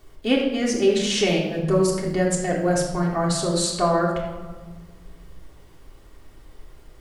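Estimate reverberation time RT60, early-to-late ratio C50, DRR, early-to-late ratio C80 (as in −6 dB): 1.4 s, 3.5 dB, −3.5 dB, 5.5 dB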